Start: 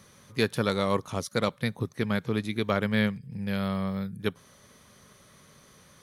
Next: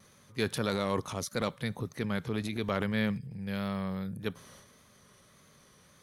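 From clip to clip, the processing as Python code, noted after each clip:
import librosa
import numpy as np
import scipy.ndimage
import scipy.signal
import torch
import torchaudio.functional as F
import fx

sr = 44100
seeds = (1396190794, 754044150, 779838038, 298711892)

y = fx.transient(x, sr, attack_db=-1, sustain_db=8)
y = fx.vibrato(y, sr, rate_hz=1.7, depth_cents=39.0)
y = F.gain(torch.from_numpy(y), -5.0).numpy()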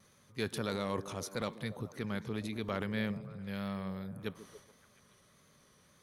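y = fx.echo_stepped(x, sr, ms=142, hz=300.0, octaves=0.7, feedback_pct=70, wet_db=-9.5)
y = F.gain(torch.from_numpy(y), -5.0).numpy()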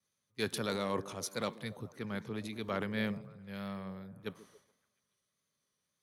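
y = fx.low_shelf(x, sr, hz=68.0, db=-12.0)
y = fx.band_widen(y, sr, depth_pct=70)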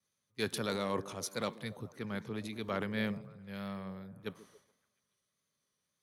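y = x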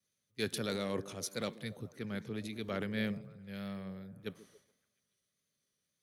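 y = fx.peak_eq(x, sr, hz=990.0, db=-9.0, octaves=0.79)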